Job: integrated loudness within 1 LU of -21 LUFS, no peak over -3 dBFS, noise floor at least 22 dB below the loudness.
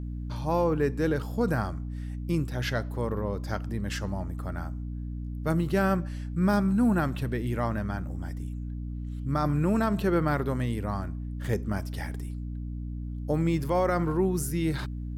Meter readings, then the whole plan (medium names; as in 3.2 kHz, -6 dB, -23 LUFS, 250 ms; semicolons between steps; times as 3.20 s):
hum 60 Hz; highest harmonic 300 Hz; hum level -32 dBFS; loudness -29.5 LUFS; peak level -14.5 dBFS; loudness target -21.0 LUFS
-> hum notches 60/120/180/240/300 Hz; trim +8.5 dB